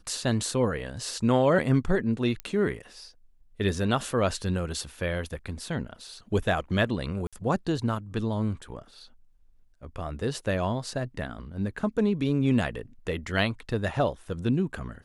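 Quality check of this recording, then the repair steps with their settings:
2.40 s: pop -18 dBFS
7.27–7.33 s: dropout 56 ms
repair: de-click; interpolate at 7.27 s, 56 ms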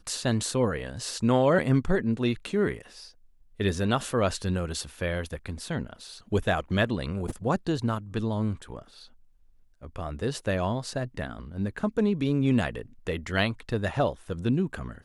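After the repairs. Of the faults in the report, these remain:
nothing left

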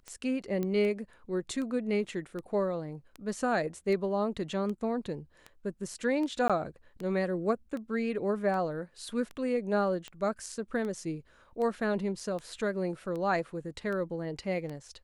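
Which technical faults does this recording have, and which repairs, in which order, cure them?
tick 78 rpm -27 dBFS
0.63 s: pop -21 dBFS
6.48–6.50 s: dropout 16 ms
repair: de-click; interpolate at 6.48 s, 16 ms

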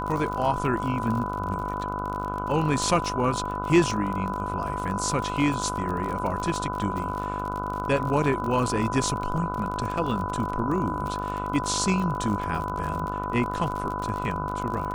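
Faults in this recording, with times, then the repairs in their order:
buzz 50 Hz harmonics 30 -33 dBFS
crackle 43 per s -30 dBFS
whine 1 kHz -31 dBFS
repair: de-click; de-hum 50 Hz, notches 30; band-stop 1 kHz, Q 30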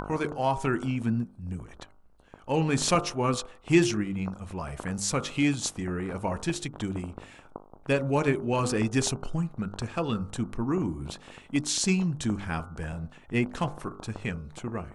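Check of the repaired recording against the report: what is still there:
nothing left

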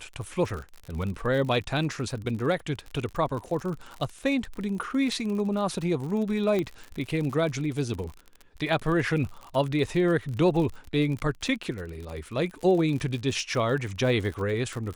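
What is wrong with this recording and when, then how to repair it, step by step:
crackle 53 per s -33 dBFS
6.59 s: pop -16 dBFS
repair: de-click

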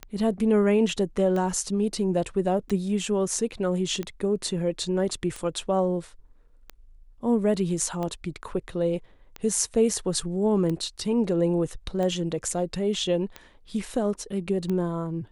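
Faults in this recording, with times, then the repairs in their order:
tick 45 rpm -19 dBFS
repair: de-click

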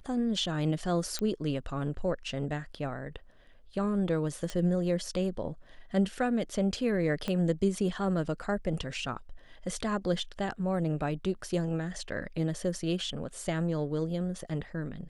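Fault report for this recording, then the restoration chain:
1.19 s: pop -18 dBFS
4.50 s: pop -21 dBFS
7.28 s: pop -19 dBFS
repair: de-click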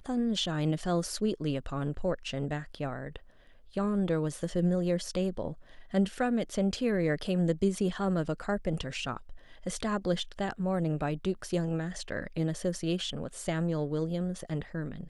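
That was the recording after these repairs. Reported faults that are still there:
7.28 s: pop

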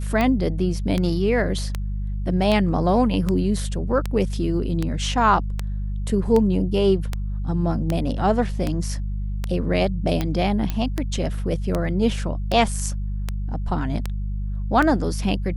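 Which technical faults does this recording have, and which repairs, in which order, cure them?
hum 50 Hz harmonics 4 -26 dBFS
tick 78 rpm -10 dBFS
10.70 s: pop -12 dBFS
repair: de-click; de-hum 50 Hz, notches 4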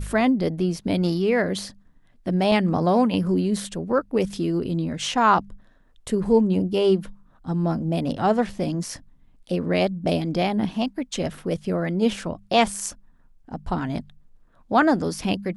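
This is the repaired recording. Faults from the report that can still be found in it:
nothing left

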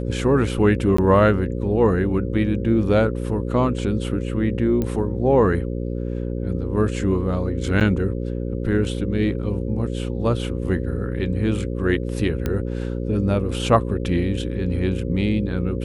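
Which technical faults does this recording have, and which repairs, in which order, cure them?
buzz 60 Hz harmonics 9 -26 dBFS
0.97–0.98 s: dropout 14 ms
4.82 s: pop -13 dBFS
7.80–7.81 s: dropout 8.4 ms
12.46 s: pop -11 dBFS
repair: de-click; de-hum 60 Hz, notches 9; interpolate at 0.97 s, 14 ms; interpolate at 7.80 s, 8.4 ms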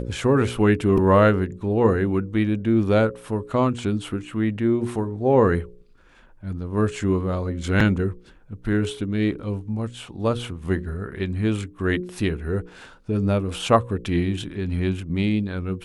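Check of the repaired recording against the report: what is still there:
nothing left

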